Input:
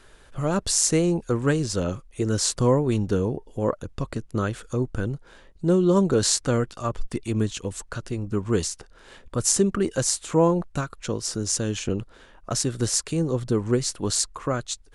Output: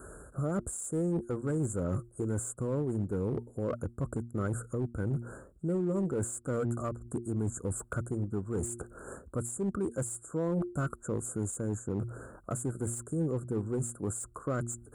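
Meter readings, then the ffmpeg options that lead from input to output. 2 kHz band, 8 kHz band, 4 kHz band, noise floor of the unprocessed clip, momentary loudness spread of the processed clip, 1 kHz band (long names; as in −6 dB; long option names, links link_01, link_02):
−11.0 dB, −13.5 dB, below −35 dB, −52 dBFS, 5 LU, −11.5 dB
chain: -filter_complex "[0:a]asuperstop=centerf=3400:order=20:qfactor=0.6,equalizer=frequency=910:width=2.3:gain=-11,bandreject=frequency=117.8:width_type=h:width=4,bandreject=frequency=235.6:width_type=h:width=4,bandreject=frequency=353.4:width_type=h:width=4,areverse,acompressor=threshold=-35dB:ratio=12,areverse,highpass=frequency=49:width=0.5412,highpass=frequency=49:width=1.3066,asplit=2[link_01][link_02];[link_02]aeval=exprs='0.02*(abs(mod(val(0)/0.02+3,4)-2)-1)':channel_layout=same,volume=-8dB[link_03];[link_01][link_03]amix=inputs=2:normalize=0,alimiter=level_in=8dB:limit=-24dB:level=0:latency=1:release=340,volume=-8dB,deesser=0.9,volume=7dB"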